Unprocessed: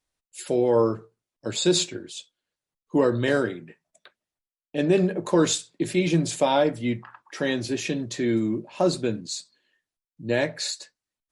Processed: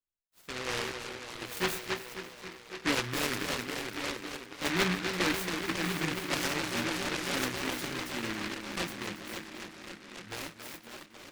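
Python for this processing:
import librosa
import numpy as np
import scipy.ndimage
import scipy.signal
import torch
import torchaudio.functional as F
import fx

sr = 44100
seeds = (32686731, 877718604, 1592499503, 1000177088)

y = fx.doppler_pass(x, sr, speed_mps=11, closest_m=8.5, pass_at_s=4.8)
y = scipy.signal.sosfilt(scipy.signal.butter(4, 6300.0, 'lowpass', fs=sr, output='sos'), y)
y = fx.echo_tape(y, sr, ms=275, feedback_pct=87, wet_db=-6.0, lp_hz=2100.0, drive_db=3.0, wow_cents=25)
y = fx.chorus_voices(y, sr, voices=6, hz=0.18, base_ms=13, depth_ms=3.2, mix_pct=35)
y = fx.rider(y, sr, range_db=5, speed_s=0.5)
y = fx.noise_mod_delay(y, sr, seeds[0], noise_hz=1700.0, depth_ms=0.41)
y = F.gain(torch.from_numpy(y), -2.5).numpy()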